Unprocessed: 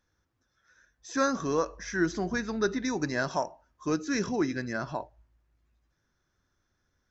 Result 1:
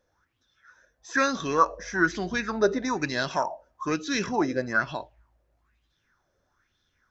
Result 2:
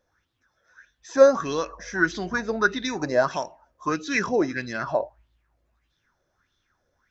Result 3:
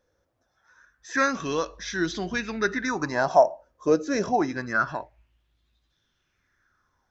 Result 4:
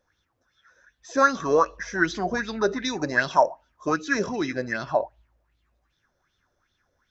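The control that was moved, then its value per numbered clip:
auto-filter bell, speed: 1.1, 1.6, 0.26, 2.6 Hertz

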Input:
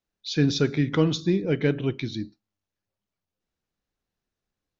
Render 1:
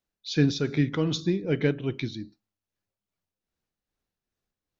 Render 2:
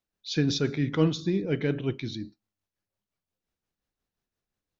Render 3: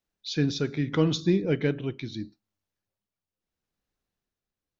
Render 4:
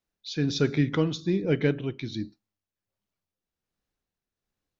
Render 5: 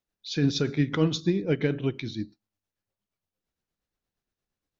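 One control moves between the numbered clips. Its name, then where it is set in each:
amplitude tremolo, speed: 2.5, 5.7, 0.77, 1.3, 8.6 Hertz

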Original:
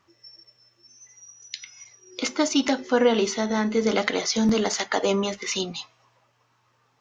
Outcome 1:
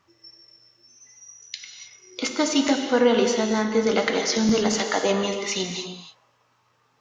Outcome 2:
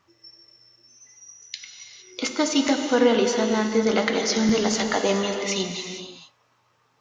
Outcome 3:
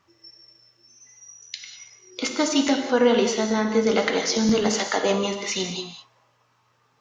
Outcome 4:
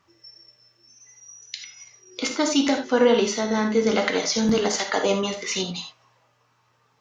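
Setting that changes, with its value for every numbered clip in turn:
reverb whose tail is shaped and stops, gate: 330, 490, 230, 110 milliseconds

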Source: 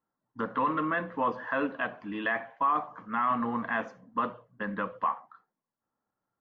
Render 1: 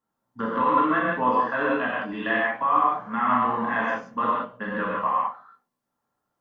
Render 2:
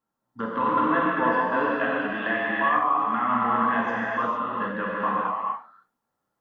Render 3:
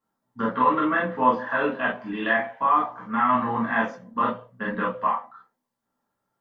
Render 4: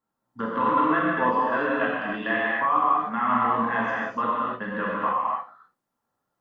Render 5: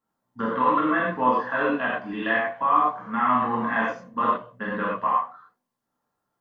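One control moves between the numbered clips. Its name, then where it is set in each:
reverb whose tail is shaped and stops, gate: 210, 490, 80, 330, 140 milliseconds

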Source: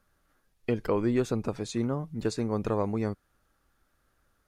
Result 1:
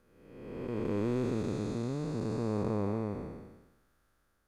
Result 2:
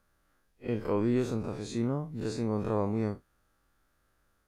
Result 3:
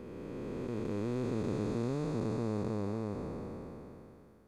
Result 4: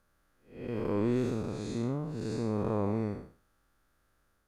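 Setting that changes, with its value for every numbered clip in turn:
spectrum smeared in time, width: 613, 84, 1,540, 235 milliseconds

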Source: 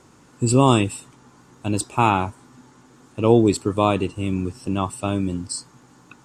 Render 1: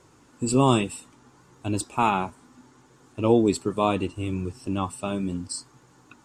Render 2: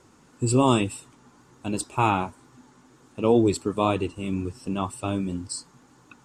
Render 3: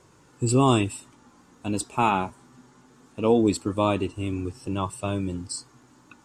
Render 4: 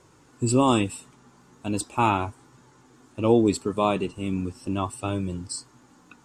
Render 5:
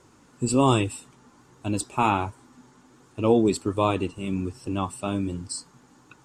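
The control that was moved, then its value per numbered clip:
flanger, speed: 0.68, 2, 0.2, 0.38, 1.3 Hertz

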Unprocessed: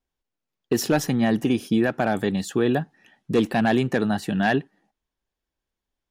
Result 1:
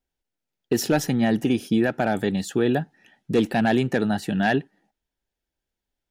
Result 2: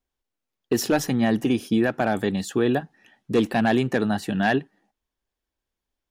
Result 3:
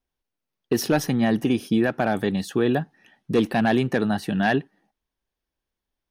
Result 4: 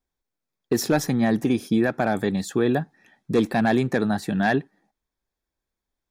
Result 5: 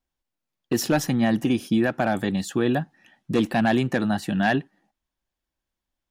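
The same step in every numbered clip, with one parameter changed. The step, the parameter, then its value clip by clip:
notch filter, centre frequency: 1,100, 160, 7,300, 2,900, 430 Hertz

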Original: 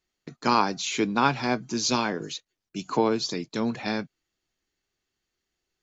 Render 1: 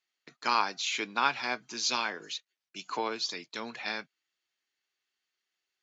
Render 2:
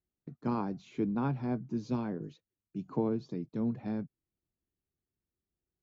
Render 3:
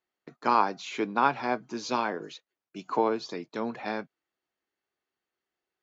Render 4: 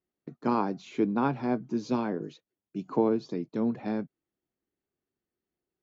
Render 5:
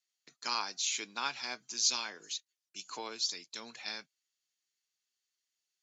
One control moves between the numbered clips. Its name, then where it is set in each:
resonant band-pass, frequency: 2,600, 100, 840, 270, 7,700 Hertz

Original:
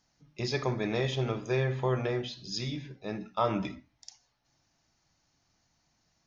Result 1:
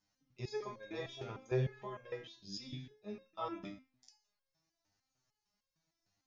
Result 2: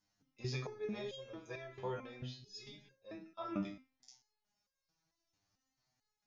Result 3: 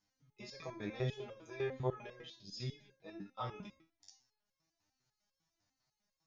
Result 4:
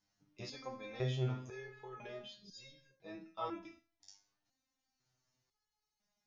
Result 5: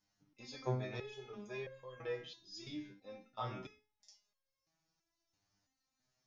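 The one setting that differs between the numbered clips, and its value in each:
step-sequenced resonator, speed: 6.6, 4.5, 10, 2, 3 Hertz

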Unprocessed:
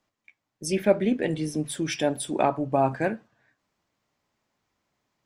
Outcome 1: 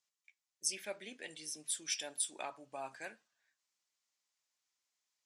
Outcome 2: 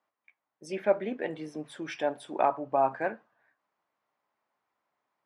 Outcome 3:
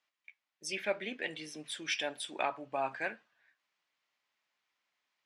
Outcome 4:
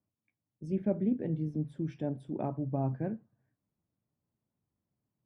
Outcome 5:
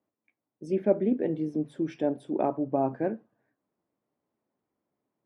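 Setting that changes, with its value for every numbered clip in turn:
resonant band-pass, frequency: 7,500, 1,000, 2,700, 120, 340 Hertz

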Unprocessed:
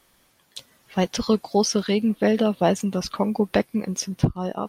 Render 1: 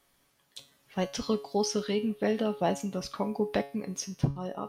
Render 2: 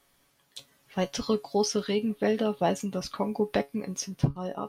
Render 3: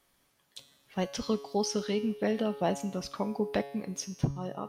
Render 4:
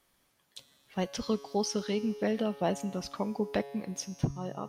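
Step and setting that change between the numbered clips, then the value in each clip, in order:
tuned comb filter, decay: 0.39, 0.16, 0.91, 2.1 seconds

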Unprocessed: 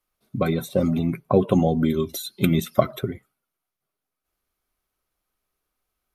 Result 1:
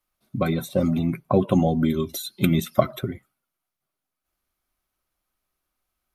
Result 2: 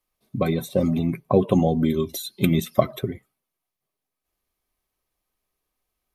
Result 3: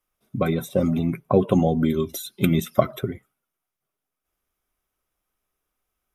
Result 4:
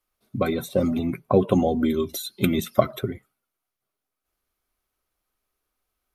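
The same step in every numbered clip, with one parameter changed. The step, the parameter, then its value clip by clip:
notch filter, centre frequency: 440, 1,400, 4,300, 160 Hertz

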